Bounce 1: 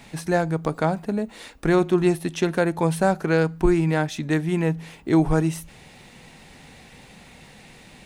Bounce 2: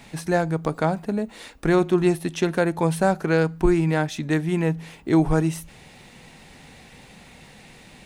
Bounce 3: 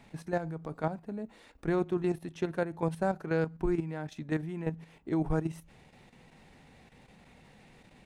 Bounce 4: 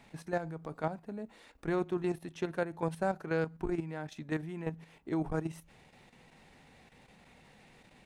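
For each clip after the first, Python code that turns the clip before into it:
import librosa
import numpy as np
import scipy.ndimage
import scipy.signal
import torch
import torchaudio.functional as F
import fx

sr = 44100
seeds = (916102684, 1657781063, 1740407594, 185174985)

y1 = x
y2 = fx.high_shelf(y1, sr, hz=2600.0, db=-9.0)
y2 = fx.level_steps(y2, sr, step_db=10)
y2 = F.gain(torch.from_numpy(y2), -7.0).numpy()
y3 = fx.low_shelf(y2, sr, hz=400.0, db=-4.5)
y3 = fx.transformer_sat(y3, sr, knee_hz=200.0)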